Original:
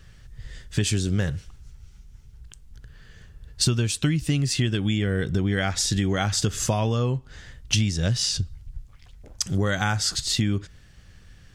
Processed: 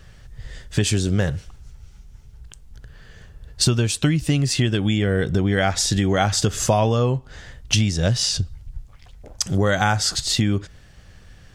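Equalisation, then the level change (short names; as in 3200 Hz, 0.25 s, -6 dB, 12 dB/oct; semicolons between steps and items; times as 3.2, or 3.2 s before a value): bell 670 Hz +6 dB 1.3 oct; +3.0 dB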